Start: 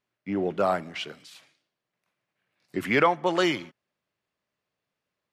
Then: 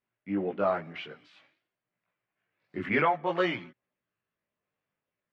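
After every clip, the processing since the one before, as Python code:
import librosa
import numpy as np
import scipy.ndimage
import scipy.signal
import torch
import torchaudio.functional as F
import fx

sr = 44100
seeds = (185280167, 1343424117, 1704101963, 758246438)

y = scipy.signal.sosfilt(scipy.signal.cheby1(2, 1.0, 2300.0, 'lowpass', fs=sr, output='sos'), x)
y = fx.chorus_voices(y, sr, voices=2, hz=0.52, base_ms=18, depth_ms=2.0, mix_pct=50)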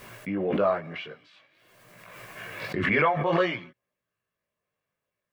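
y = x + 0.32 * np.pad(x, (int(1.8 * sr / 1000.0), 0))[:len(x)]
y = fx.pre_swell(y, sr, db_per_s=30.0)
y = F.gain(torch.from_numpy(y), 1.5).numpy()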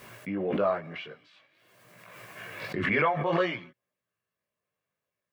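y = scipy.signal.sosfilt(scipy.signal.butter(2, 64.0, 'highpass', fs=sr, output='sos'), x)
y = F.gain(torch.from_numpy(y), -2.5).numpy()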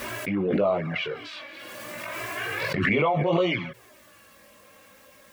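y = fx.env_flanger(x, sr, rest_ms=3.7, full_db=-23.0)
y = fx.env_flatten(y, sr, amount_pct=50)
y = F.gain(torch.from_numpy(y), 4.0).numpy()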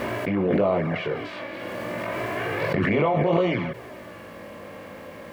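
y = fx.bin_compress(x, sr, power=0.6)
y = fx.high_shelf(y, sr, hz=2100.0, db=-11.0)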